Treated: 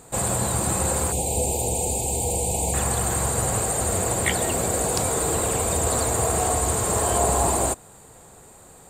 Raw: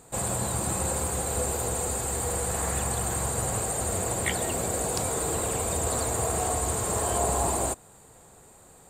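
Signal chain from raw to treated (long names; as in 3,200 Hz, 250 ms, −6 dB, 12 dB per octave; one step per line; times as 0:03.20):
0:01.12–0:02.74: elliptic band-stop filter 890–2,400 Hz, stop band 40 dB
level +5 dB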